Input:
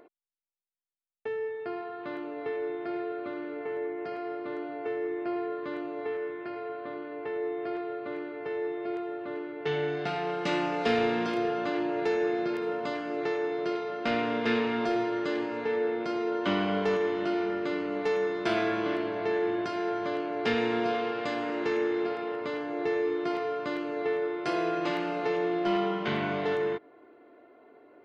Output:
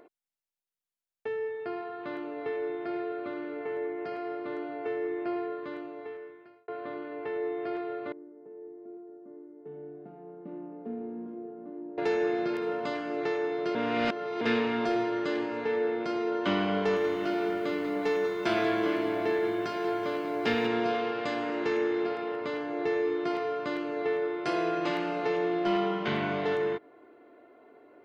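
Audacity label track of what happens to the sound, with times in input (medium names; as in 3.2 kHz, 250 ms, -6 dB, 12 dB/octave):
5.290000	6.680000	fade out
8.120000	11.980000	ladder band-pass 270 Hz, resonance 45%
13.750000	14.410000	reverse
16.780000	20.670000	bit-crushed delay 188 ms, feedback 55%, word length 9-bit, level -9.5 dB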